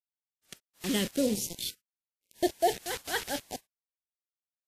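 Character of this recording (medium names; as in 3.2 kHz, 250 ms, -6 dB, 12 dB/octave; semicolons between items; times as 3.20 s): a quantiser's noise floor 6-bit, dither none; phasing stages 2, 0.9 Hz, lowest notch 650–1300 Hz; WMA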